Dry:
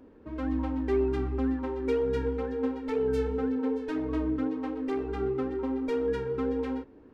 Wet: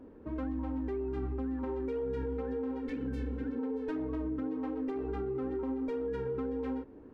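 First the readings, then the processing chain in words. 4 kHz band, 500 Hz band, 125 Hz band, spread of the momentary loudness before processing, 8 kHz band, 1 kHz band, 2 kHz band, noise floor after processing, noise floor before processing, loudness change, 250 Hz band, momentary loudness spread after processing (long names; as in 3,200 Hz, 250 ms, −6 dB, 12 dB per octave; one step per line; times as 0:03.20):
below −10 dB, −6.5 dB, −4.5 dB, 4 LU, can't be measured, −6.5 dB, −7.5 dB, −52 dBFS, −53 dBFS, −5.5 dB, −5.0 dB, 2 LU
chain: healed spectral selection 0:02.89–0:03.56, 210–1,400 Hz before
high-shelf EQ 2,100 Hz −10 dB
brickwall limiter −25.5 dBFS, peak gain reduction 8 dB
downward compressor 3 to 1, threshold −35 dBFS, peak gain reduction 5 dB
level +2 dB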